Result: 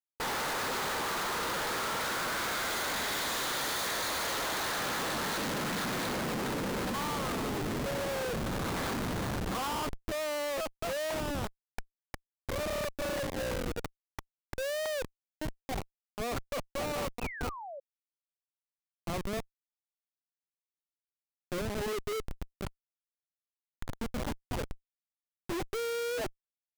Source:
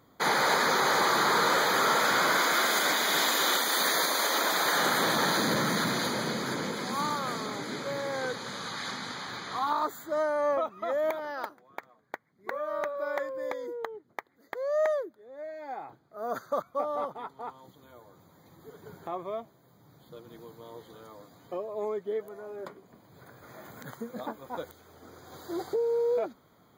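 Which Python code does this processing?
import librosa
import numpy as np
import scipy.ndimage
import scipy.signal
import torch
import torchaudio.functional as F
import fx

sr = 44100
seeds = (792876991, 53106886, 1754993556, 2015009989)

y = fx.schmitt(x, sr, flips_db=-34.0)
y = fx.spec_paint(y, sr, seeds[0], shape='fall', start_s=17.21, length_s=0.59, low_hz=530.0, high_hz=2700.0, level_db=-40.0)
y = F.gain(torch.from_numpy(y), -2.5).numpy()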